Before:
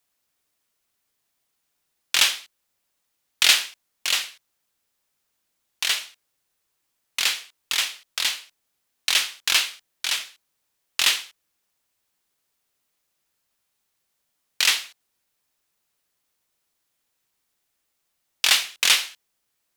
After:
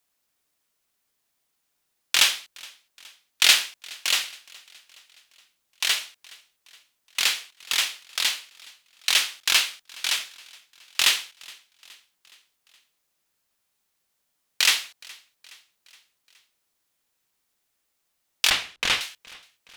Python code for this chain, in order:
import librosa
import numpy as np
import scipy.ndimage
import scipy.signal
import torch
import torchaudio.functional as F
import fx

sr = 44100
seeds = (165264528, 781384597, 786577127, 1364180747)

p1 = fx.hum_notches(x, sr, base_hz=50, count=3)
p2 = fx.riaa(p1, sr, side='playback', at=(18.5, 19.01))
y = p2 + fx.echo_feedback(p2, sr, ms=419, feedback_pct=55, wet_db=-24.0, dry=0)